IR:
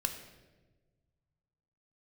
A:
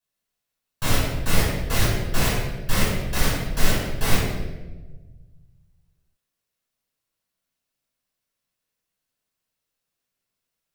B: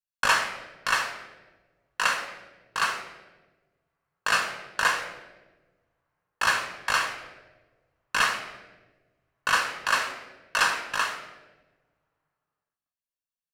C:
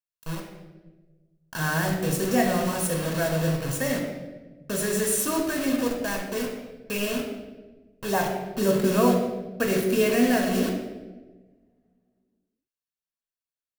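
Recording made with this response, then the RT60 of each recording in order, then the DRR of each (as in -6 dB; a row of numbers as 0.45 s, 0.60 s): B; 1.3 s, 1.3 s, 1.3 s; -8.5 dB, 5.5 dB, 1.5 dB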